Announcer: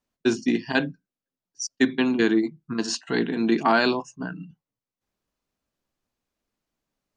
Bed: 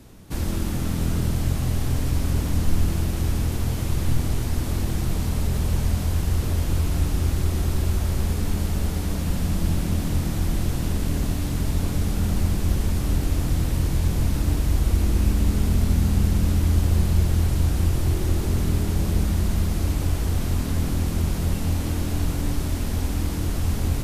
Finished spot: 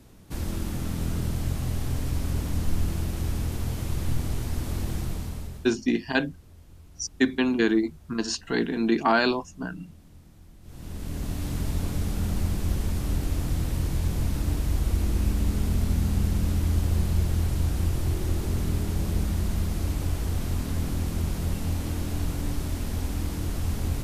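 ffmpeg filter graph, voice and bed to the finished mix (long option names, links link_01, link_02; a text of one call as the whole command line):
ffmpeg -i stem1.wav -i stem2.wav -filter_complex "[0:a]adelay=5400,volume=-1.5dB[link_01];[1:a]volume=18dB,afade=type=out:start_time=4.96:duration=0.76:silence=0.0749894,afade=type=in:start_time=10.62:duration=0.88:silence=0.0707946[link_02];[link_01][link_02]amix=inputs=2:normalize=0" out.wav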